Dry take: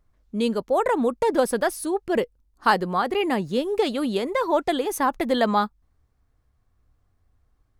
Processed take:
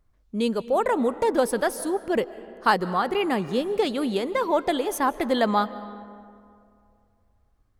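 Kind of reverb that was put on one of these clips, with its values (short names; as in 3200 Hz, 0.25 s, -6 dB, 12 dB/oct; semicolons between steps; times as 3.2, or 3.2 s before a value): digital reverb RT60 2.4 s, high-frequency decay 0.5×, pre-delay 0.11 s, DRR 15.5 dB; gain -1 dB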